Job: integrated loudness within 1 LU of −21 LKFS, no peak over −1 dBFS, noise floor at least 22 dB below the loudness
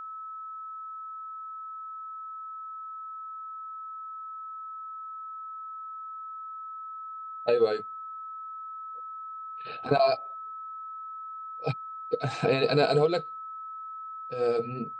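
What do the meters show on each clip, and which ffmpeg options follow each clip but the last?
interfering tone 1,300 Hz; level of the tone −37 dBFS; integrated loudness −32.5 LKFS; sample peak −9.5 dBFS; target loudness −21.0 LKFS
→ -af "bandreject=frequency=1300:width=30"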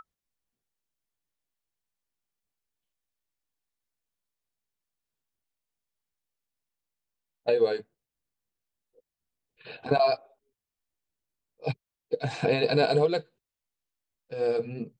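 interfering tone none found; integrated loudness −27.5 LKFS; sample peak −10.0 dBFS; target loudness −21.0 LKFS
→ -af "volume=6.5dB"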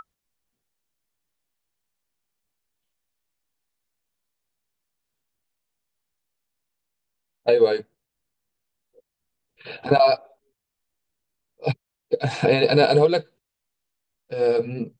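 integrated loudness −21.0 LKFS; sample peak −3.5 dBFS; background noise floor −84 dBFS

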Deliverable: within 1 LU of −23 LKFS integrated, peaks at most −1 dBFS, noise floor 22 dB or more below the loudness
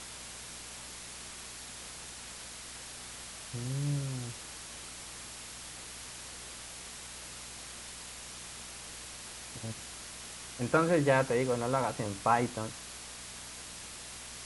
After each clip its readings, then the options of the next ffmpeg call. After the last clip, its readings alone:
mains hum 60 Hz; hum harmonics up to 240 Hz; level of the hum −55 dBFS; background noise floor −46 dBFS; target noise floor −59 dBFS; integrated loudness −36.5 LKFS; sample peak −12.5 dBFS; target loudness −23.0 LKFS
→ -af "bandreject=frequency=60:width_type=h:width=4,bandreject=frequency=120:width_type=h:width=4,bandreject=frequency=180:width_type=h:width=4,bandreject=frequency=240:width_type=h:width=4"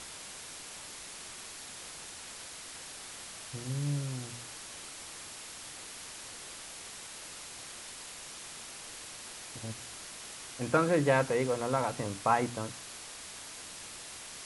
mains hum none found; background noise floor −46 dBFS; target noise floor −59 dBFS
→ -af "afftdn=noise_reduction=13:noise_floor=-46"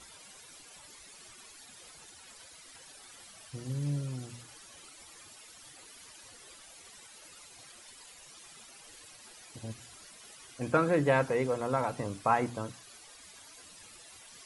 background noise floor −54 dBFS; integrated loudness −32.0 LKFS; sample peak −12.5 dBFS; target loudness −23.0 LKFS
→ -af "volume=9dB"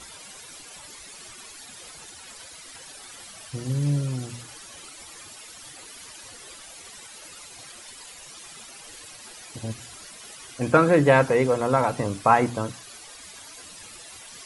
integrated loudness −23.0 LKFS; sample peak −3.5 dBFS; background noise floor −45 dBFS

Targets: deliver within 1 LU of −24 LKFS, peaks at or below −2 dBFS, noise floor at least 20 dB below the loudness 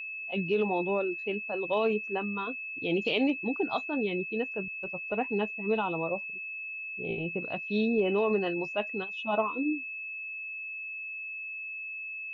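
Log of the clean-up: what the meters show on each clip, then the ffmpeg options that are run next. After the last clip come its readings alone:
interfering tone 2,600 Hz; level of the tone −36 dBFS; integrated loudness −31.0 LKFS; sample peak −15.0 dBFS; target loudness −24.0 LKFS
→ -af "bandreject=frequency=2600:width=30"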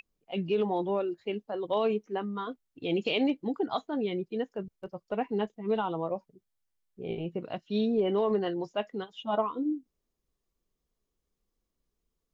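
interfering tone none found; integrated loudness −31.5 LKFS; sample peak −15.5 dBFS; target loudness −24.0 LKFS
→ -af "volume=7.5dB"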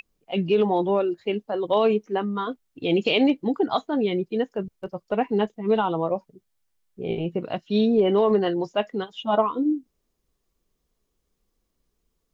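integrated loudness −24.0 LKFS; sample peak −8.0 dBFS; background noise floor −76 dBFS

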